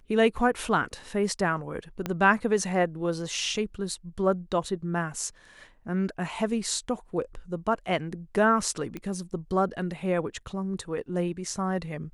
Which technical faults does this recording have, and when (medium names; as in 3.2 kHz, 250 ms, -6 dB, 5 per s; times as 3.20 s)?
2.06 s: pop -15 dBFS
8.97 s: pop -22 dBFS